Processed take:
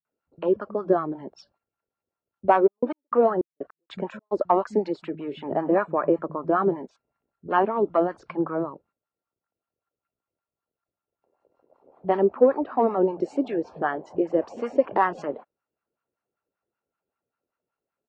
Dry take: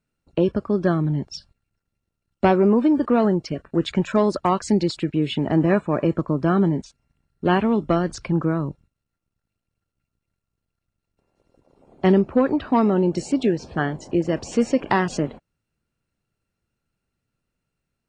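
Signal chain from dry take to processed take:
multiband delay without the direct sound lows, highs 50 ms, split 160 Hz
LFO wah 5.2 Hz 420–1,200 Hz, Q 2.4
0:02.66–0:04.31: gate pattern "xxx..x.." 154 BPM −60 dB
level +5.5 dB

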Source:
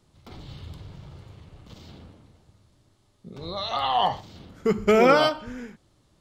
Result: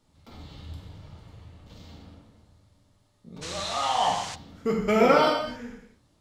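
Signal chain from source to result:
reverb whose tail is shaped and stops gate 300 ms falling, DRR −1.5 dB
0:03.41–0:04.34: noise in a band 810–7,400 Hz −33 dBFS
level −5.5 dB

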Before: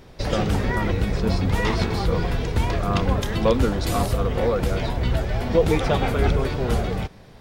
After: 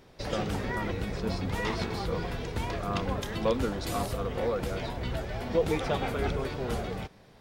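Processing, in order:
low-shelf EQ 120 Hz −7.5 dB
level −7 dB

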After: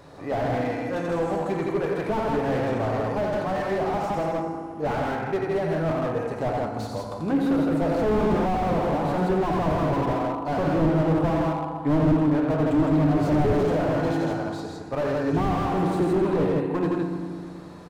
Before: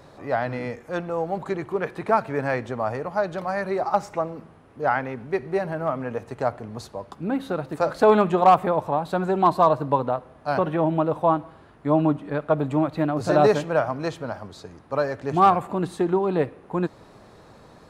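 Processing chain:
0:00.96–0:01.40: parametric band 7,900 Hz +13.5 dB 0.96 octaves
loudspeakers that aren't time-aligned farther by 30 metres −7 dB, 56 metres −4 dB
feedback delay network reverb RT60 1.9 s, low-frequency decay 1.4×, high-frequency decay 0.75×, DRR 4.5 dB
slew-rate limiting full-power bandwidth 44 Hz

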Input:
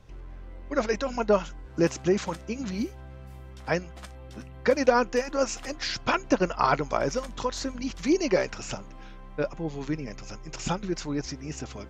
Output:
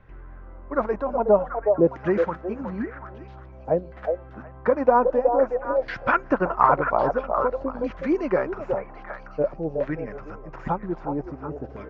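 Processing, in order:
auto-filter low-pass saw down 0.51 Hz 530–1,800 Hz
echo through a band-pass that steps 368 ms, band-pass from 580 Hz, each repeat 1.4 octaves, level −2.5 dB

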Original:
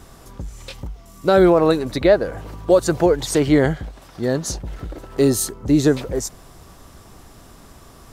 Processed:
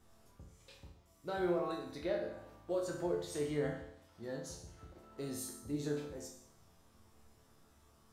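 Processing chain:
resonators tuned to a chord D2 minor, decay 0.68 s
level −5.5 dB

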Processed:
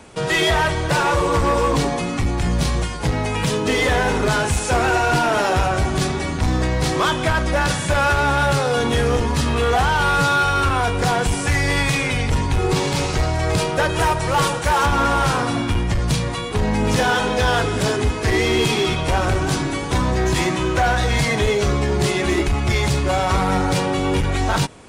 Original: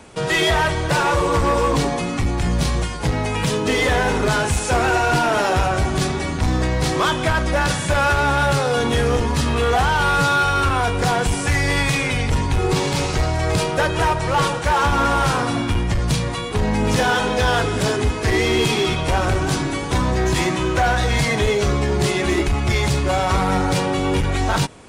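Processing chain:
0:13.89–0:14.86: high-shelf EQ 9,100 Hz +10 dB

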